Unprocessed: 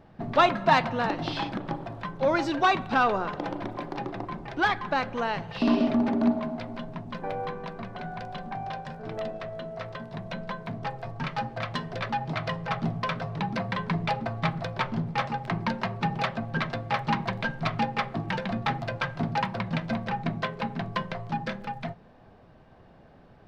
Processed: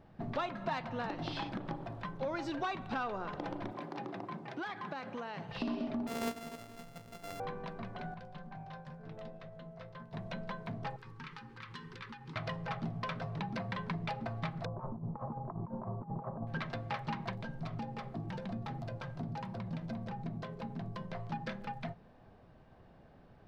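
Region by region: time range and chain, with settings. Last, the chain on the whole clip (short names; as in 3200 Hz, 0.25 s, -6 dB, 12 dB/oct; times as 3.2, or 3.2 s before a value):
3.71–5.49 HPF 140 Hz 24 dB/oct + compressor, threshold -30 dBFS
6.07–7.4 sample sorter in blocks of 64 samples + upward expander, over -36 dBFS
8.14–10.13 bell 160 Hz +9 dB 0.57 oct + resonator 520 Hz, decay 0.15 s, mix 70% + Doppler distortion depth 0.14 ms
10.96–12.36 low shelf 250 Hz -9 dB + compressor 4:1, threshold -36 dBFS + Butterworth band-stop 650 Hz, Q 1.3
14.65–16.47 Chebyshev low-pass 1100 Hz, order 4 + negative-ratio compressor -33 dBFS, ratio -0.5
17.35–21.13 compressor 2:1, threshold -30 dBFS + bell 2100 Hz -9 dB 2.5 oct
whole clip: low shelf 160 Hz +3 dB; compressor 4:1, threshold -28 dBFS; gain -6.5 dB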